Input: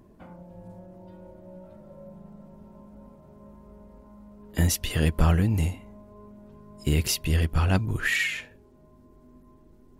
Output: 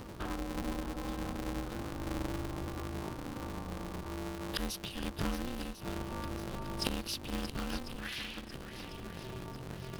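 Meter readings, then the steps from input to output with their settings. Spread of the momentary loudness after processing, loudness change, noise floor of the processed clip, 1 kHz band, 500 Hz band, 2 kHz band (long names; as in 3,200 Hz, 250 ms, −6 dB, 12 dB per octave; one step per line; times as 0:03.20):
8 LU, −14.0 dB, −46 dBFS, −3.0 dB, −5.0 dB, −12.5 dB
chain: gate with flip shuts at −27 dBFS, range −25 dB
low-pass filter 9,000 Hz 12 dB per octave
high-shelf EQ 2,400 Hz +11 dB
phaser with its sweep stopped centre 2,100 Hz, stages 6
feedback echo with a long and a short gap by turns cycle 1,047 ms, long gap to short 1.5 to 1, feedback 48%, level −11 dB
ring modulator with a square carrier 130 Hz
level +10 dB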